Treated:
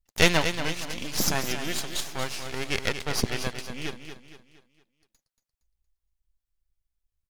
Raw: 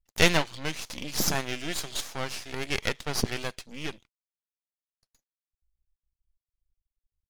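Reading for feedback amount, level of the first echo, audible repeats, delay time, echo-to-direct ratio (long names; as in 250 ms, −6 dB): 42%, −9.0 dB, 4, 232 ms, −8.0 dB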